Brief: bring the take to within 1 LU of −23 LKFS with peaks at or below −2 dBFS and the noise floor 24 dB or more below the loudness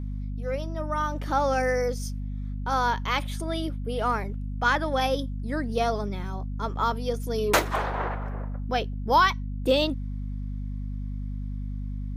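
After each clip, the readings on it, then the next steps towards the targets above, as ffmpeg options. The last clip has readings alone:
mains hum 50 Hz; hum harmonics up to 250 Hz; level of the hum −29 dBFS; integrated loudness −28.0 LKFS; sample peak −8.5 dBFS; target loudness −23.0 LKFS
→ -af "bandreject=frequency=50:width_type=h:width=6,bandreject=frequency=100:width_type=h:width=6,bandreject=frequency=150:width_type=h:width=6,bandreject=frequency=200:width_type=h:width=6,bandreject=frequency=250:width_type=h:width=6"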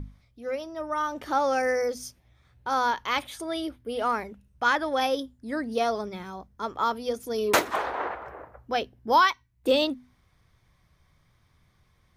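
mains hum none found; integrated loudness −27.5 LKFS; sample peak −9.0 dBFS; target loudness −23.0 LKFS
→ -af "volume=4.5dB"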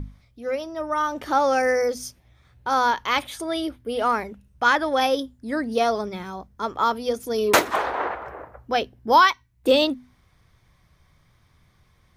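integrated loudness −23.0 LKFS; sample peak −4.5 dBFS; background noise floor −61 dBFS

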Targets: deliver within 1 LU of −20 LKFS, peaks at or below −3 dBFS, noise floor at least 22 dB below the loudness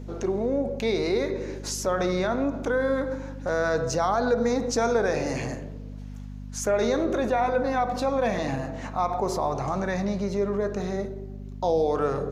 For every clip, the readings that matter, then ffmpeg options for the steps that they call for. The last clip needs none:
mains hum 50 Hz; hum harmonics up to 250 Hz; level of the hum −35 dBFS; integrated loudness −26.5 LKFS; sample peak −13.0 dBFS; target loudness −20.0 LKFS
→ -af "bandreject=frequency=50:width_type=h:width=4,bandreject=frequency=100:width_type=h:width=4,bandreject=frequency=150:width_type=h:width=4,bandreject=frequency=200:width_type=h:width=4,bandreject=frequency=250:width_type=h:width=4"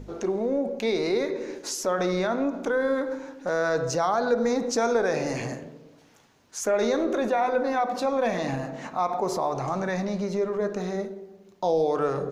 mains hum none found; integrated loudness −26.5 LKFS; sample peak −13.0 dBFS; target loudness −20.0 LKFS
→ -af "volume=6.5dB"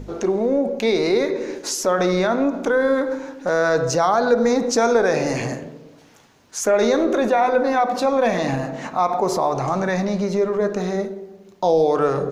integrated loudness −20.0 LKFS; sample peak −6.5 dBFS; background noise floor −48 dBFS

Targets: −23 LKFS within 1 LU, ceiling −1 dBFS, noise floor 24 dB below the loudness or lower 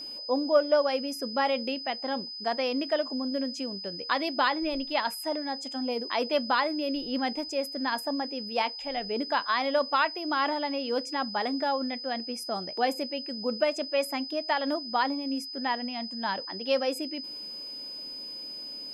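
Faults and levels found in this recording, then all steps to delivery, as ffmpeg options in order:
interfering tone 5,000 Hz; level of the tone −37 dBFS; integrated loudness −29.5 LKFS; sample peak −11.0 dBFS; target loudness −23.0 LKFS
→ -af "bandreject=frequency=5000:width=30"
-af "volume=6.5dB"

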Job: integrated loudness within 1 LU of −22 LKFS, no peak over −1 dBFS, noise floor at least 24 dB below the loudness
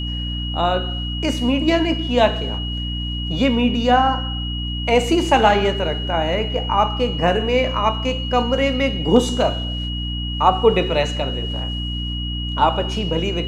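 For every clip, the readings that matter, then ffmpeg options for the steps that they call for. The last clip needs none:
mains hum 60 Hz; hum harmonics up to 300 Hz; level of the hum −23 dBFS; interfering tone 2,900 Hz; level of the tone −28 dBFS; integrated loudness −19.5 LKFS; sample peak −1.5 dBFS; target loudness −22.0 LKFS
→ -af "bandreject=frequency=60:width_type=h:width=4,bandreject=frequency=120:width_type=h:width=4,bandreject=frequency=180:width_type=h:width=4,bandreject=frequency=240:width_type=h:width=4,bandreject=frequency=300:width_type=h:width=4"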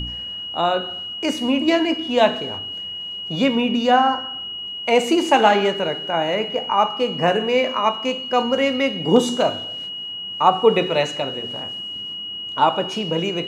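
mains hum none found; interfering tone 2,900 Hz; level of the tone −28 dBFS
→ -af "bandreject=frequency=2900:width=30"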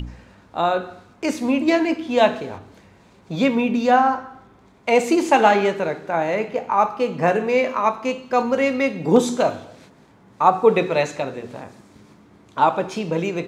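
interfering tone none found; integrated loudness −20.0 LKFS; sample peak −2.0 dBFS; target loudness −22.0 LKFS
→ -af "volume=-2dB"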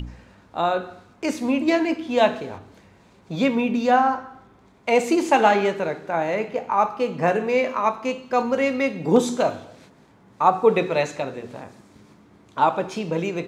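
integrated loudness −22.0 LKFS; sample peak −4.0 dBFS; background noise floor −54 dBFS

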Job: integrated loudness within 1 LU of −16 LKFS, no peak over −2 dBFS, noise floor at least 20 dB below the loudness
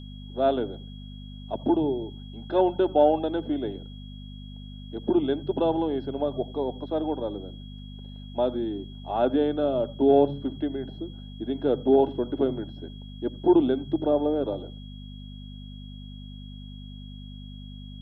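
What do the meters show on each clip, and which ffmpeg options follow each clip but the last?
mains hum 50 Hz; hum harmonics up to 250 Hz; level of the hum −38 dBFS; interfering tone 3,300 Hz; level of the tone −50 dBFS; integrated loudness −26.0 LKFS; sample peak −8.5 dBFS; target loudness −16.0 LKFS
→ -af "bandreject=frequency=50:width_type=h:width=4,bandreject=frequency=100:width_type=h:width=4,bandreject=frequency=150:width_type=h:width=4,bandreject=frequency=200:width_type=h:width=4,bandreject=frequency=250:width_type=h:width=4"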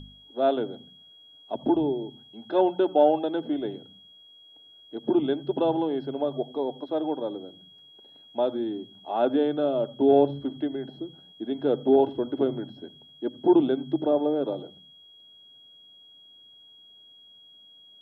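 mains hum none found; interfering tone 3,300 Hz; level of the tone −50 dBFS
→ -af "bandreject=frequency=3300:width=30"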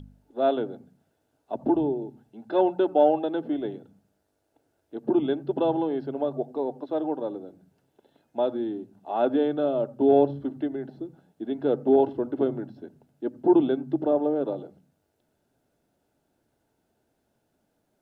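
interfering tone none found; integrated loudness −26.0 LKFS; sample peak −8.5 dBFS; target loudness −16.0 LKFS
→ -af "volume=10dB,alimiter=limit=-2dB:level=0:latency=1"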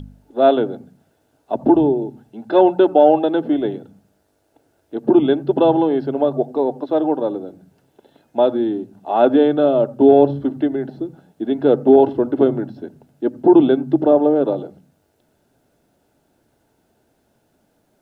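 integrated loudness −16.5 LKFS; sample peak −2.0 dBFS; background noise floor −64 dBFS

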